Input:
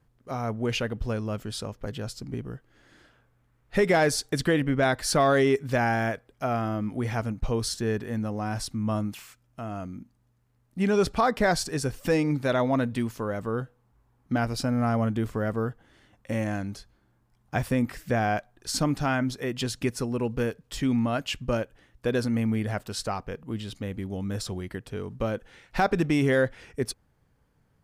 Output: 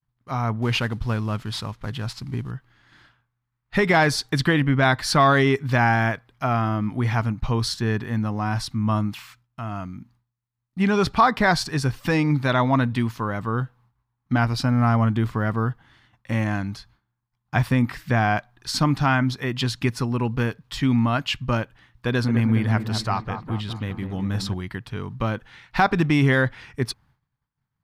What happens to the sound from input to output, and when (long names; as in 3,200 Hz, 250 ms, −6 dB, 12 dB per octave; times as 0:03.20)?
0:00.62–0:02.51: variable-slope delta modulation 64 kbit/s
0:22.08–0:24.54: delay with a low-pass on its return 204 ms, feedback 54%, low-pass 1,400 Hz, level −7 dB
whole clip: dynamic equaliser 370 Hz, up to +5 dB, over −36 dBFS, Q 0.72; downward expander −54 dBFS; graphic EQ with 10 bands 125 Hz +8 dB, 500 Hz −9 dB, 1,000 Hz +9 dB, 2,000 Hz +4 dB, 4,000 Hz +7 dB, 8,000 Hz −4 dB